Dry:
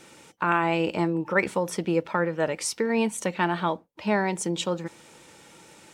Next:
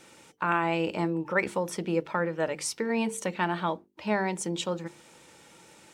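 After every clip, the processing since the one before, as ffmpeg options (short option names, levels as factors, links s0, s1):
-af "bandreject=f=50:t=h:w=6,bandreject=f=100:t=h:w=6,bandreject=f=150:t=h:w=6,bandreject=f=200:t=h:w=6,bandreject=f=250:t=h:w=6,bandreject=f=300:t=h:w=6,bandreject=f=350:t=h:w=6,bandreject=f=400:t=h:w=6,bandreject=f=450:t=h:w=6,volume=0.708"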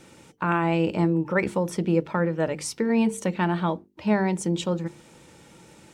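-af "lowshelf=f=320:g=12"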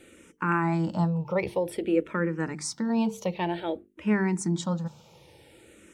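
-filter_complex "[0:a]asplit=2[s0][s1];[s1]afreqshift=-0.53[s2];[s0][s2]amix=inputs=2:normalize=1"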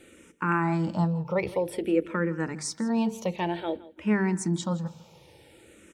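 -af "aecho=1:1:164|328:0.112|0.0191"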